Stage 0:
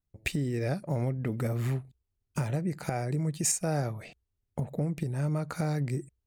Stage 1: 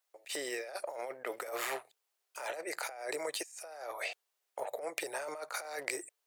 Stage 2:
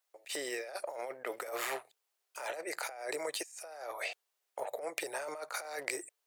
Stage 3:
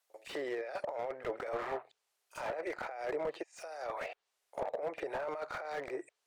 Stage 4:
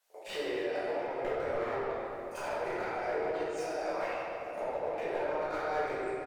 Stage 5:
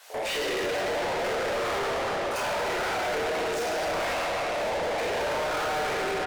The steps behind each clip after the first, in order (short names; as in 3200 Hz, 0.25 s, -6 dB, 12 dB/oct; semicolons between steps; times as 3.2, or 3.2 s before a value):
inverse Chebyshev high-pass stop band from 210 Hz, stop band 50 dB; negative-ratio compressor -46 dBFS, ratio -1; gain +5 dB
nothing audible
reverse echo 44 ms -19.5 dB; treble ducked by the level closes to 1200 Hz, closed at -33.5 dBFS; slew limiter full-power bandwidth 14 Hz; gain +3 dB
compressor 4:1, threshold -42 dBFS, peak gain reduction 9.5 dB; feedback echo 0.291 s, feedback 56%, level -16.5 dB; shoebox room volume 160 m³, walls hard, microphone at 1.4 m
overdrive pedal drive 38 dB, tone 5500 Hz, clips at -20 dBFS; gain -2.5 dB